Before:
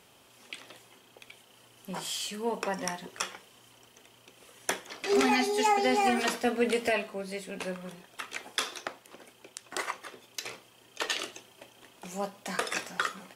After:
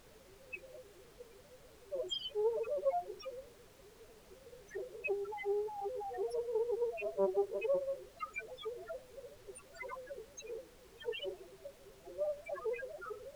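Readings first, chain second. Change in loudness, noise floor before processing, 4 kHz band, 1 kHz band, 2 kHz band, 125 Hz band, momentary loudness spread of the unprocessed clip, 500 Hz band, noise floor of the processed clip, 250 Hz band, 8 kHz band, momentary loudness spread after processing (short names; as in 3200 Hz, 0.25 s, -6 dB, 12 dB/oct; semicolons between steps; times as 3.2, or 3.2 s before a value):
-8.5 dB, -60 dBFS, -12.0 dB, -14.0 dB, -15.0 dB, under -10 dB, 20 LU, -3.5 dB, -60 dBFS, -15.5 dB, under -15 dB, 22 LU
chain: Wiener smoothing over 41 samples; inverse Chebyshev high-pass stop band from 160 Hz, stop band 50 dB; notch 750 Hz, Q 12; negative-ratio compressor -41 dBFS, ratio -1; flange 2 Hz, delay 7.7 ms, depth 3.2 ms, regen +83%; dispersion lows, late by 41 ms, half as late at 2000 Hz; loudest bins only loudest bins 2; added noise pink -75 dBFS; Doppler distortion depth 0.21 ms; gain +13.5 dB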